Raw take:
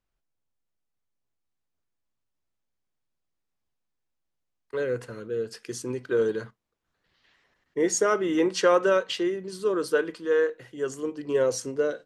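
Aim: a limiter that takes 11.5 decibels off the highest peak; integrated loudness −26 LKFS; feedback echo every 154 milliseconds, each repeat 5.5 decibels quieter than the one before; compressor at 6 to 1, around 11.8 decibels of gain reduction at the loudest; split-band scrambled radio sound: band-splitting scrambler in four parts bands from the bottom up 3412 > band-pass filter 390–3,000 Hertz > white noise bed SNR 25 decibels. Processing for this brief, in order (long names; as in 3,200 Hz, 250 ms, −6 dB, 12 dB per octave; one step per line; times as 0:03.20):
downward compressor 6 to 1, threshold −28 dBFS
brickwall limiter −31 dBFS
repeating echo 154 ms, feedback 53%, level −5.5 dB
band-splitting scrambler in four parts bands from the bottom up 3412
band-pass filter 390–3,000 Hz
white noise bed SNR 25 dB
level +13 dB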